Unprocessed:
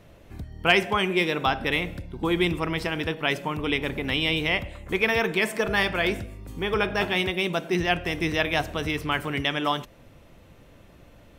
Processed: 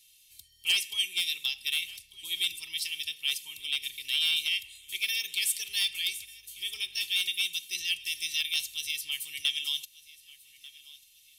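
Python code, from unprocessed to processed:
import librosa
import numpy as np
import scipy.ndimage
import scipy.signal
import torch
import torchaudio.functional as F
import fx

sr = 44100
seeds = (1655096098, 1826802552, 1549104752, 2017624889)

p1 = scipy.signal.sosfilt(scipy.signal.cheby2(4, 40, 1600.0, 'highpass', fs=sr, output='sos'), x)
p2 = fx.peak_eq(p1, sr, hz=11000.0, db=9.0, octaves=0.67)
p3 = p2 + 0.53 * np.pad(p2, (int(2.2 * sr / 1000.0), 0))[:len(p2)]
p4 = np.clip(10.0 ** (23.0 / 20.0) * p3, -1.0, 1.0) / 10.0 ** (23.0 / 20.0)
p5 = p4 + fx.echo_feedback(p4, sr, ms=1191, feedback_pct=31, wet_db=-20.5, dry=0)
y = p5 * librosa.db_to_amplitude(4.5)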